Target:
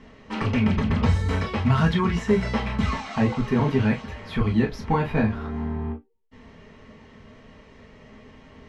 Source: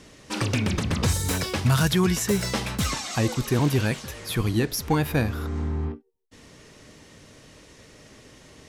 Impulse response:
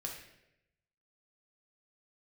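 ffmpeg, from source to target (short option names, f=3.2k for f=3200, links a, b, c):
-filter_complex "[0:a]lowpass=2.4k[a];[1:a]atrim=start_sample=2205,afade=t=out:st=0.13:d=0.01,atrim=end_sample=6174,asetrate=74970,aresample=44100[b];[a][b]afir=irnorm=-1:irlink=0,volume=8dB"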